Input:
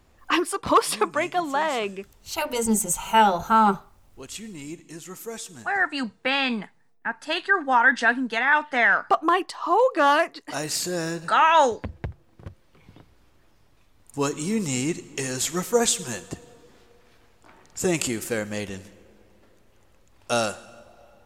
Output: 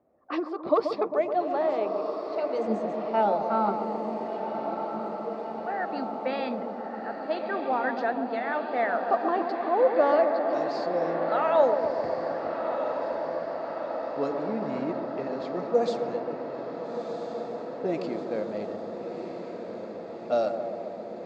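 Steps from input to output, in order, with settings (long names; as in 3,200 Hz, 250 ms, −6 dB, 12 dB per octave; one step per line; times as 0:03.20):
loudspeaker in its box 340–4,700 Hz, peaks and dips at 380 Hz −4 dB, 630 Hz +7 dB, 970 Hz −8 dB, 1,600 Hz −6 dB, 3,000 Hz −8 dB, 4,500 Hz +7 dB
bucket-brigade delay 133 ms, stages 1,024, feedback 75%, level −7.5 dB
low-pass that shuts in the quiet parts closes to 1,400 Hz, open at −19.5 dBFS
tilt shelving filter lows +9 dB, about 1,200 Hz
feedback delay with all-pass diffusion 1,327 ms, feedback 72%, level −7.5 dB
level −7.5 dB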